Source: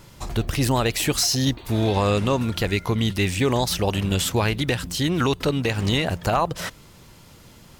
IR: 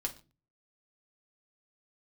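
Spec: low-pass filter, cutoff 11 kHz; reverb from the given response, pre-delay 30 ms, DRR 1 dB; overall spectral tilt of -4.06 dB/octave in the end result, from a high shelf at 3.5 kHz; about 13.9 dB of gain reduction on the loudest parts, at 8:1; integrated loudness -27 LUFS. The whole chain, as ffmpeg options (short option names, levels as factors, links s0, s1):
-filter_complex "[0:a]lowpass=11000,highshelf=f=3500:g=5.5,acompressor=threshold=0.0282:ratio=8,asplit=2[s0][s1];[1:a]atrim=start_sample=2205,adelay=30[s2];[s1][s2]afir=irnorm=-1:irlink=0,volume=0.794[s3];[s0][s3]amix=inputs=2:normalize=0,volume=1.68"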